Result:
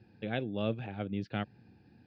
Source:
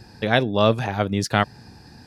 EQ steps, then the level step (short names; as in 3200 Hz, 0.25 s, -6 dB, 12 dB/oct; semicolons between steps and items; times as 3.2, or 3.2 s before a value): speaker cabinet 130–2700 Hz, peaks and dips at 150 Hz -6 dB, 250 Hz -4 dB, 420 Hz -5 dB, 630 Hz -5 dB, 980 Hz -5 dB, 1900 Hz -8 dB; bell 1100 Hz -13.5 dB 1.2 oct; -7.5 dB